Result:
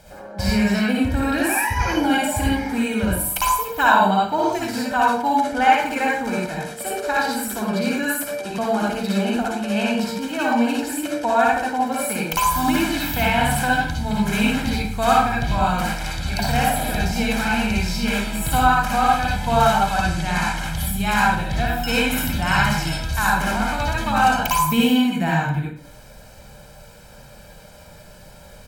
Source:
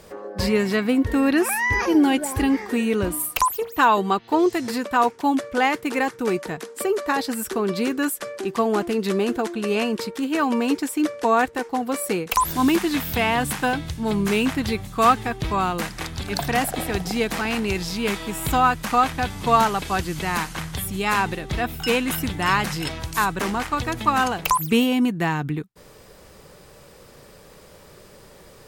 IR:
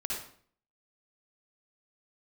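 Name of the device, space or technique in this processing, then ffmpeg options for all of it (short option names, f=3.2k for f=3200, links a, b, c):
microphone above a desk: -filter_complex "[0:a]asettb=1/sr,asplit=3[a][b][c];[a]atrim=end=19.954[d];[b]atrim=start=19.95:end=20.57,asetpts=PTS-STARTPTS,afade=t=in:d=0.004:c=qsin,afade=t=out:st=0.616:d=0.004:c=qsin,lowpass=10k[e];[c]atrim=start=20.566[f];[d][e]acrossfade=d=0.004:c1=hsin:c2=qsin[g];[g][f]acrossfade=d=0.004:c1=qsin:c2=hsin,aecho=1:1:1.3:0.76[h];[1:a]atrim=start_sample=2205[i];[h][i]afir=irnorm=-1:irlink=0,volume=-2dB"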